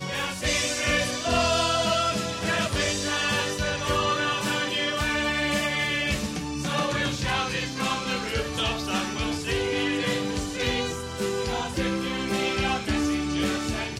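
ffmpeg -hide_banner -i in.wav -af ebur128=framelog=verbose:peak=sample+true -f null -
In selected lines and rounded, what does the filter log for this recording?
Integrated loudness:
  I:         -25.6 LUFS
  Threshold: -35.6 LUFS
Loudness range:
  LRA:         2.9 LU
  Threshold: -45.7 LUFS
  LRA low:   -27.0 LUFS
  LRA high:  -24.1 LUFS
Sample peak:
  Peak:      -12.0 dBFS
True peak:
  Peak:      -11.9 dBFS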